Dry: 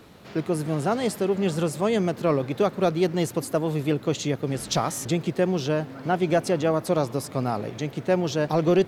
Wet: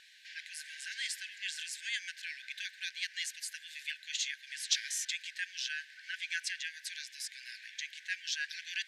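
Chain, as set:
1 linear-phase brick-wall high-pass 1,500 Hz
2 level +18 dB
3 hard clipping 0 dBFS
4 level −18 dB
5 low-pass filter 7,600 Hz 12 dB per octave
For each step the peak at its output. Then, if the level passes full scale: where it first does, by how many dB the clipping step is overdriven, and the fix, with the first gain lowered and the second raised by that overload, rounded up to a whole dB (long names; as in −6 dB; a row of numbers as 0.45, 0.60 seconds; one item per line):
−12.0, +6.0, 0.0, −18.0, −17.0 dBFS
step 2, 6.0 dB
step 2 +12 dB, step 4 −12 dB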